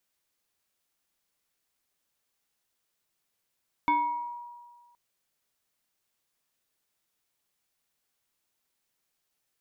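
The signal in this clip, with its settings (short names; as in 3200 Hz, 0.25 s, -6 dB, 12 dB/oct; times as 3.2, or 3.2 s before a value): FM tone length 1.07 s, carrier 958 Hz, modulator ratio 1.31, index 0.69, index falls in 0.89 s exponential, decay 1.60 s, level -19.5 dB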